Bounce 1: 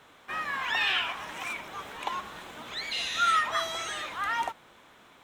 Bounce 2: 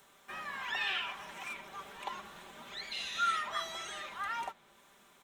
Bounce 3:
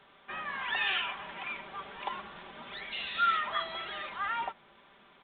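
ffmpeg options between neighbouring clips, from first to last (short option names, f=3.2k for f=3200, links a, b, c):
-filter_complex "[0:a]aecho=1:1:5.1:0.5,acrossover=split=6000[a][b];[b]acompressor=mode=upward:threshold=-51dB:ratio=2.5[c];[a][c]amix=inputs=2:normalize=0,volume=-8.5dB"
-af "aresample=8000,aresample=44100,volume=4dB"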